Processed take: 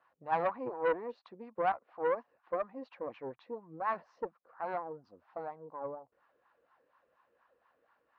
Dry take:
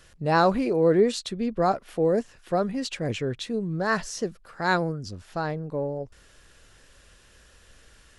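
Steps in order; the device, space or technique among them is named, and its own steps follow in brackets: wah-wah guitar rig (wah-wah 4.2 Hz 450–1000 Hz, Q 4.4; valve stage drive 24 dB, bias 0.55; cabinet simulation 90–4100 Hz, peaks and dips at 100 Hz -8 dB, 180 Hz -4 dB, 410 Hz -9 dB, 600 Hz -5 dB, 1.1 kHz +4 dB, 3.3 kHz -7 dB); trim +3 dB

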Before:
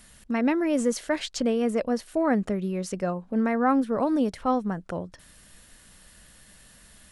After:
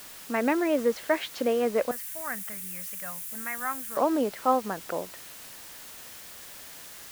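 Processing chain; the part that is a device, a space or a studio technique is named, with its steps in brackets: wax cylinder (band-pass 390–2700 Hz; wow and flutter; white noise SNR 17 dB); 1.91–3.97 s: FFT filter 140 Hz 0 dB, 360 Hz -27 dB, 1.9 kHz -1 dB, 4.4 kHz -5 dB, 10 kHz +9 dB; trim +3 dB

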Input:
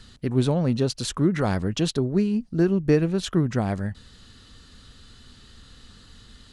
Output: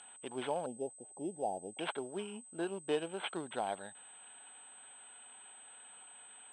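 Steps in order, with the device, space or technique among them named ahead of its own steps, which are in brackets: 0.66–1.79 s: elliptic low-pass 780 Hz, stop band 40 dB; toy sound module (decimation joined by straight lines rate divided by 8×; class-D stage that switches slowly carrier 8.2 kHz; cabinet simulation 790–4800 Hz, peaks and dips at 820 Hz +5 dB, 1.2 kHz -9 dB, 1.9 kHz -10 dB, 3.2 kHz +10 dB); trim -2 dB

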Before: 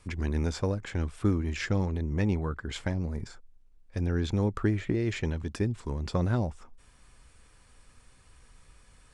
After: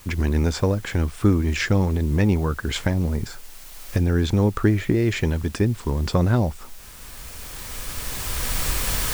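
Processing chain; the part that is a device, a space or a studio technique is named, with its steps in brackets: cheap recorder with automatic gain (white noise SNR 27 dB; recorder AGC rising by 10 dB/s); trim +8 dB

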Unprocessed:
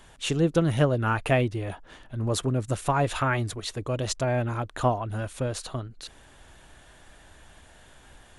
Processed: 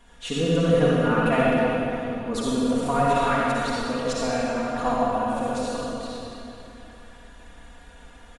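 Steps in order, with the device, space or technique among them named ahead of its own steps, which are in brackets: comb 4.2 ms, depth 92%; swimming-pool hall (reverberation RT60 3.1 s, pre-delay 47 ms, DRR -6 dB; treble shelf 5 kHz -6.5 dB); trim -5 dB

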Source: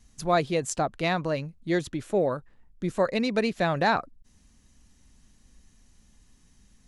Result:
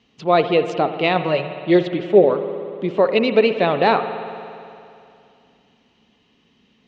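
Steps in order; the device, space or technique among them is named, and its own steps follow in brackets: kitchen radio (cabinet simulation 210–3800 Hz, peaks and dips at 430 Hz +7 dB, 1.6 kHz -7 dB, 2.9 kHz +8 dB); 1.15–2.24 s: comb 5.4 ms, depth 67%; spring tank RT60 2.6 s, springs 58 ms, chirp 25 ms, DRR 9 dB; trim +7 dB

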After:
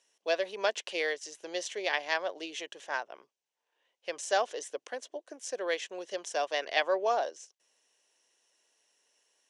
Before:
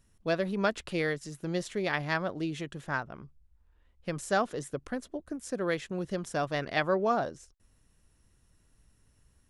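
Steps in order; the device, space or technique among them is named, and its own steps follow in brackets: phone speaker on a table (cabinet simulation 460–8900 Hz, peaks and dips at 1.3 kHz -10 dB, 3 kHz +6 dB, 6 kHz +7 dB); trim +1.5 dB

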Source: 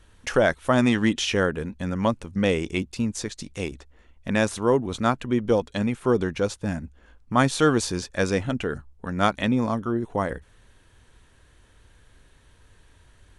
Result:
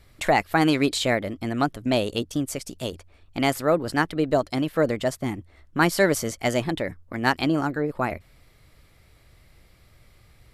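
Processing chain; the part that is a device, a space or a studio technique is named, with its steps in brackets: nightcore (tape speed +27%)

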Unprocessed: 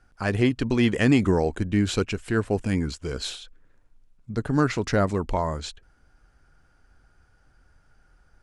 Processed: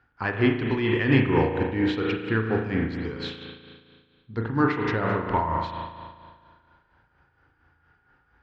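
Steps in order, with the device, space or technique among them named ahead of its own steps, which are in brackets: combo amplifier with spring reverb and tremolo (spring tank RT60 1.9 s, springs 36 ms, chirp 75 ms, DRR 0 dB; tremolo 4.3 Hz, depth 55%; cabinet simulation 81–3800 Hz, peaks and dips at 200 Hz -5 dB, 630 Hz -8 dB, 940 Hz +6 dB, 1.8 kHz +4 dB)

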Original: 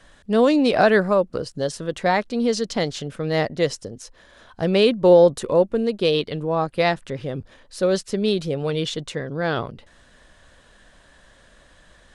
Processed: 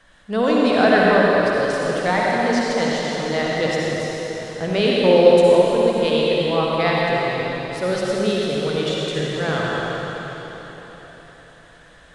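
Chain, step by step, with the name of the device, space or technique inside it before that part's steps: peaking EQ 1.6 kHz +5.5 dB 2.3 oct; cathedral (reverberation RT60 4.3 s, pre-delay 55 ms, DRR -5 dB); trim -5.5 dB

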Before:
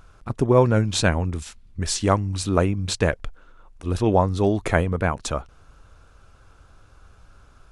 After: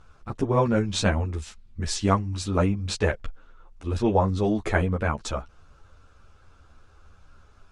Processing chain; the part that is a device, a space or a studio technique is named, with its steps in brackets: string-machine ensemble chorus (three-phase chorus; low-pass 7.9 kHz 12 dB/octave)

